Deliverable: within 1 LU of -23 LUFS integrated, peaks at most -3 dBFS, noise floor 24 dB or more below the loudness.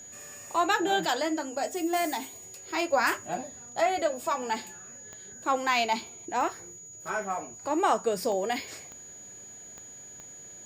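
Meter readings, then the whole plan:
clicks found 6; steady tone 6.8 kHz; tone level -44 dBFS; loudness -29.0 LUFS; peak level -13.0 dBFS; loudness target -23.0 LUFS
-> de-click; band-stop 6.8 kHz, Q 30; trim +6 dB

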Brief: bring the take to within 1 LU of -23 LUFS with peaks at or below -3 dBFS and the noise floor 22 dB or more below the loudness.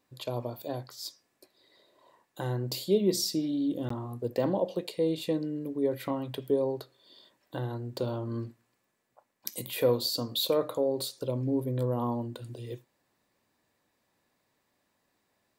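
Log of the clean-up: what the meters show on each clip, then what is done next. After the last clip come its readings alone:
dropouts 1; longest dropout 14 ms; loudness -31.5 LUFS; peak level -10.5 dBFS; loudness target -23.0 LUFS
-> interpolate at 3.89 s, 14 ms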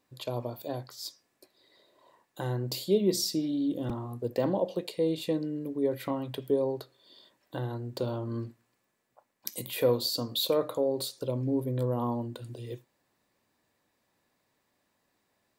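dropouts 0; loudness -31.5 LUFS; peak level -10.5 dBFS; loudness target -23.0 LUFS
-> trim +8.5 dB; peak limiter -3 dBFS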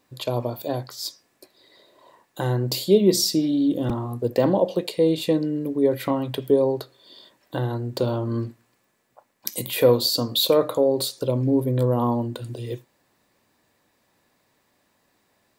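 loudness -23.0 LUFS; peak level -3.0 dBFS; noise floor -68 dBFS

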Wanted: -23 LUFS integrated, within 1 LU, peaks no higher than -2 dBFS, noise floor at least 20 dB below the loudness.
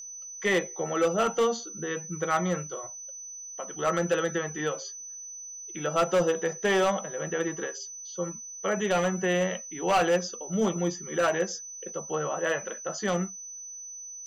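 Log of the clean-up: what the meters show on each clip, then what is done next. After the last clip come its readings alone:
clipped samples 0.9%; clipping level -18.5 dBFS; steady tone 6 kHz; tone level -39 dBFS; loudness -29.0 LUFS; peak level -18.5 dBFS; loudness target -23.0 LUFS
-> clip repair -18.5 dBFS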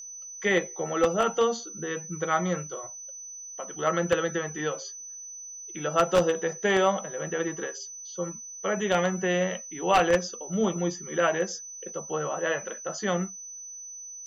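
clipped samples 0.0%; steady tone 6 kHz; tone level -39 dBFS
-> band-stop 6 kHz, Q 30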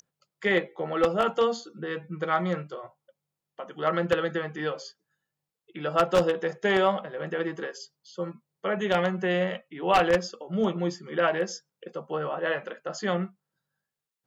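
steady tone not found; loudness -27.5 LUFS; peak level -9.0 dBFS; loudness target -23.0 LUFS
-> trim +4.5 dB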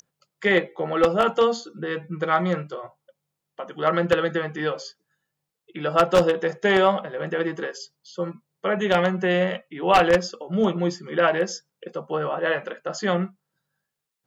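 loudness -23.0 LUFS; peak level -4.5 dBFS; noise floor -83 dBFS

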